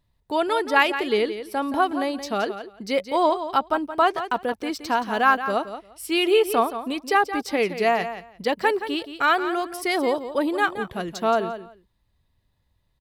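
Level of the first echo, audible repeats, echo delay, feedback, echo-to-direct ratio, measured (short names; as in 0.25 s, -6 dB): -11.0 dB, 2, 0.173 s, 16%, -11.0 dB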